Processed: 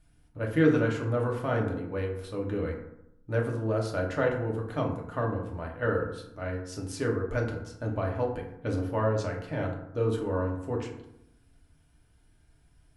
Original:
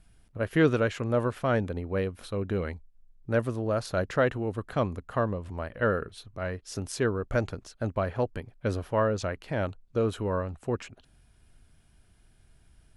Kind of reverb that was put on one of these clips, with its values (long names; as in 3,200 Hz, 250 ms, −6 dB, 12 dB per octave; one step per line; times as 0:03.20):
feedback delay network reverb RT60 0.81 s, low-frequency decay 1.2×, high-frequency decay 0.45×, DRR −1.5 dB
level −6 dB